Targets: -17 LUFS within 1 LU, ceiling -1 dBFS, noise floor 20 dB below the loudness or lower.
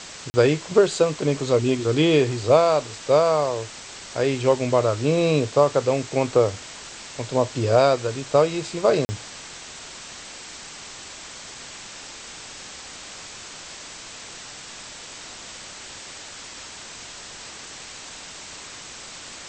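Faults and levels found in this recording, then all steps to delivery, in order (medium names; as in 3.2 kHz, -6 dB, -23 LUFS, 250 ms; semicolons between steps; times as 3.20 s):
dropouts 2; longest dropout 40 ms; noise floor -40 dBFS; noise floor target -41 dBFS; loudness -21.0 LUFS; peak level -4.0 dBFS; loudness target -17.0 LUFS
-> interpolate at 0.30/9.05 s, 40 ms; noise reduction 6 dB, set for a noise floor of -40 dBFS; trim +4 dB; peak limiter -1 dBFS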